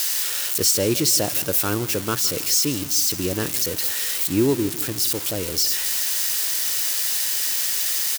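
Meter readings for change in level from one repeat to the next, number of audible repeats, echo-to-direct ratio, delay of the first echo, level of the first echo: −6.5 dB, 3, −16.0 dB, 163 ms, −17.0 dB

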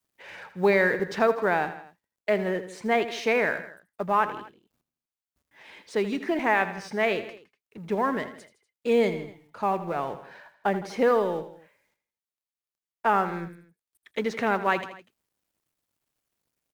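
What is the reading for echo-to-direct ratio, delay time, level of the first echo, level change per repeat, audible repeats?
−11.5 dB, 81 ms, −13.0 dB, −5.0 dB, 3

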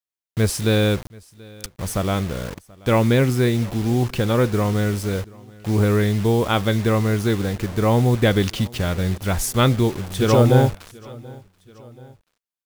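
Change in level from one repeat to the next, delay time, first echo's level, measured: −4.5 dB, 732 ms, −24.0 dB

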